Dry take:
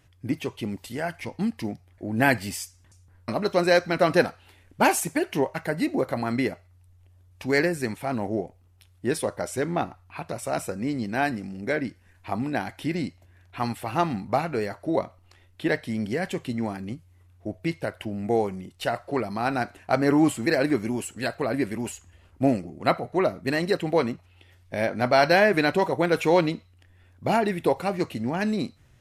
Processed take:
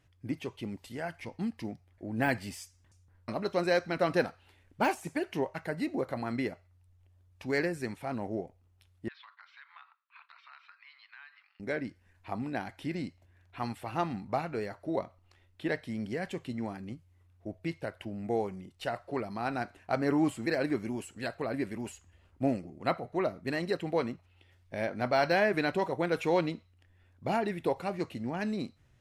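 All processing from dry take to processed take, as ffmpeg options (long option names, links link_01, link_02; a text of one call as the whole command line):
ffmpeg -i in.wav -filter_complex "[0:a]asettb=1/sr,asplit=3[link_01][link_02][link_03];[link_01]atrim=end=9.084[link_04];[link_02]atrim=start=9.08:end=11.6,asetpts=PTS-STARTPTS,afade=type=in:duration=0.004:curve=qsin,afade=type=out:start_time=2.516:duration=0.004:curve=qsin,agate=range=-7dB:threshold=-42dB:ratio=16:release=100:detection=peak,asuperpass=centerf=2100:order=12:qfactor=0.66,acompressor=threshold=-42dB:ratio=4:attack=3.2:release=140:knee=1:detection=peak[link_05];[link_03]atrim=start=11.596[link_06];[link_04][link_05]acrossfade=duration=0.004:curve1=hsin:curve2=qsin[link_07];[link_07][link_06]acrossfade=duration=0.004:curve1=qsin:curve2=hsin,deesser=0.55,highshelf=frequency=9000:gain=-7.5,volume=-7.5dB" out.wav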